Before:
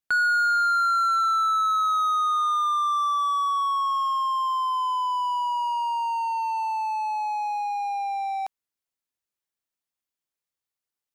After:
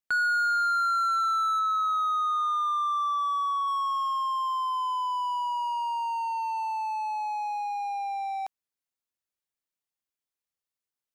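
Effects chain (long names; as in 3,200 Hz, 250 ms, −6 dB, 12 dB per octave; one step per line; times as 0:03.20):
0:01.59–0:03.68: bass and treble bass +13 dB, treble −7 dB
level −3.5 dB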